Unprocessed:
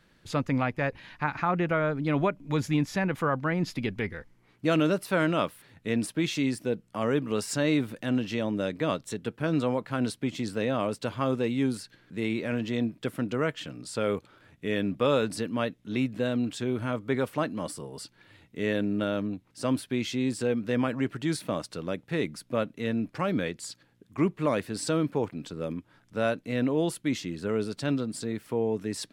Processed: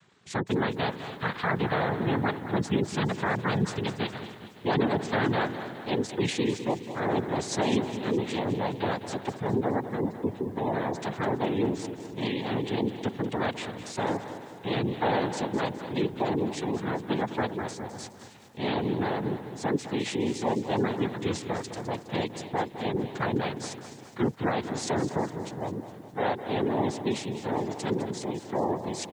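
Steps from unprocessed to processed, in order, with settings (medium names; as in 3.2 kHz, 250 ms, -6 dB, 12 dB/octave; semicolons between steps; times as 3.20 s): 9.43–10.93 s: median filter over 25 samples; noise-vocoded speech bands 6; on a send: feedback delay 279 ms, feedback 47%, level -17 dB; on the sum: spectral gate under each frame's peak -30 dB strong; vibrato 9.4 Hz 69 cents; in parallel at +1 dB: peak limiter -19 dBFS, peak gain reduction 8.5 dB; on the sum: bit-crushed delay 207 ms, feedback 55%, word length 8-bit, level -11.5 dB; trim -6 dB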